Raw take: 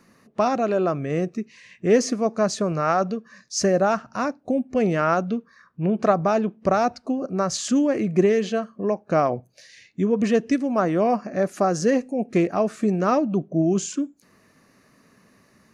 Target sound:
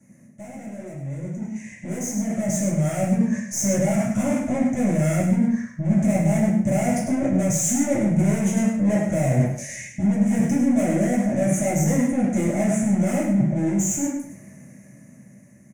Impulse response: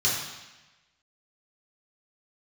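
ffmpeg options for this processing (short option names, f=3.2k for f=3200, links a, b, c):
-filter_complex "[0:a]aeval=exprs='(tanh(56.2*val(0)+0.7)-tanh(0.7))/56.2':c=same,equalizer=f=430:w=3.1:g=-14.5[a];[1:a]atrim=start_sample=2205,afade=t=out:st=0.3:d=0.01,atrim=end_sample=13671,asetrate=61740,aresample=44100[b];[a][b]afir=irnorm=-1:irlink=0,areverse,acompressor=threshold=-34dB:ratio=4,areverse,aecho=1:1:102|204:0.398|0.0597,dynaudnorm=f=400:g=11:m=16dB,firequalizer=gain_entry='entry(630,0);entry(1100,-19);entry(2100,-5);entry(3000,-20);entry(4400,-29);entry(6300,-2)':delay=0.05:min_phase=1"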